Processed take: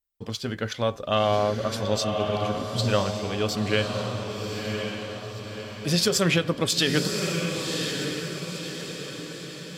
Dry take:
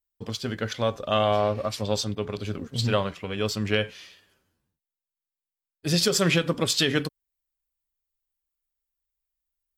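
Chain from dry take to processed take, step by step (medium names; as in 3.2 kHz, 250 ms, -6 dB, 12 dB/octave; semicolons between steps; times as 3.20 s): echo that smears into a reverb 1068 ms, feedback 50%, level -4.5 dB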